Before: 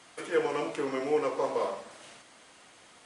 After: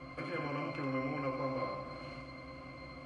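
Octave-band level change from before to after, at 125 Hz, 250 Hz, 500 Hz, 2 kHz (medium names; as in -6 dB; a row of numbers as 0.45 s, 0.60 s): +9.0 dB, -1.5 dB, -10.5 dB, -3.0 dB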